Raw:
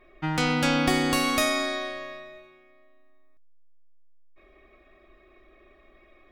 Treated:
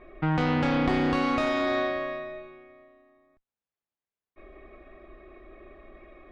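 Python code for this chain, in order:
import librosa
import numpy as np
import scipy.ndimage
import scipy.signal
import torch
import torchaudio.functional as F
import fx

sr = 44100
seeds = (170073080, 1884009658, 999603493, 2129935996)

p1 = fx.diode_clip(x, sr, knee_db=-26.5)
p2 = fx.over_compress(p1, sr, threshold_db=-32.0, ratio=-1.0)
p3 = p1 + (p2 * 10.0 ** (0.5 / 20.0))
p4 = scipy.signal.sosfilt(scipy.signal.butter(2, 4100.0, 'lowpass', fs=sr, output='sos'), p3)
p5 = fx.high_shelf(p4, sr, hz=2200.0, db=-11.5)
y = fx.doppler_dist(p5, sr, depth_ms=0.11)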